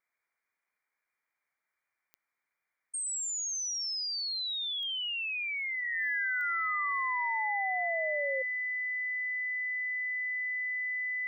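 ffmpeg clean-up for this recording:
ffmpeg -i in.wav -af "adeclick=threshold=4,bandreject=frequency=2000:width=30,afftdn=noise_reduction=6:noise_floor=-80" out.wav

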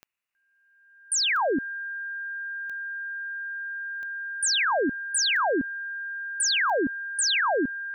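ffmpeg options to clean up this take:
ffmpeg -i in.wav -af "adeclick=threshold=4,bandreject=frequency=1600:width=30,agate=range=-21dB:threshold=-51dB" out.wav

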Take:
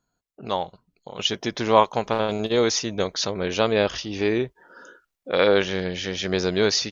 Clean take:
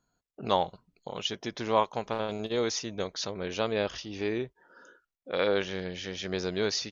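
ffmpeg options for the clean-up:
ffmpeg -i in.wav -af "asetnsamples=nb_out_samples=441:pad=0,asendcmd='1.19 volume volume -8.5dB',volume=0dB" out.wav

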